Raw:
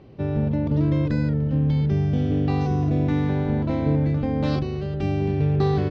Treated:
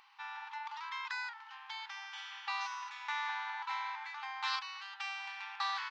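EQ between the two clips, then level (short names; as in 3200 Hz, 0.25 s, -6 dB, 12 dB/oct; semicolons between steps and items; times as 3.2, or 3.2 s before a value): brick-wall FIR high-pass 800 Hz; +1.5 dB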